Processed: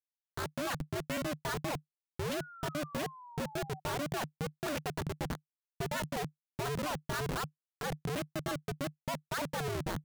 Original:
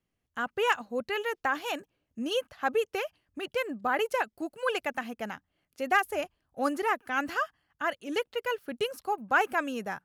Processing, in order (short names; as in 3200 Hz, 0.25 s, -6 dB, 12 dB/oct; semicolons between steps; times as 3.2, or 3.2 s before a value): Schmitt trigger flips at -33 dBFS; ring modulator 150 Hz; painted sound fall, 2.38–3.8, 750–1500 Hz -51 dBFS